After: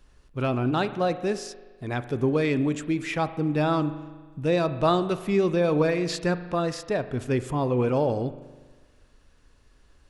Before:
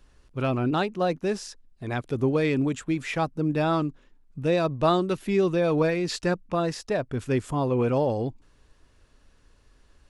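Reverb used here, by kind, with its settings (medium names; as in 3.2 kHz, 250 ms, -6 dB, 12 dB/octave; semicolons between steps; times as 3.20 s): spring tank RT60 1.4 s, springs 40 ms, chirp 30 ms, DRR 12 dB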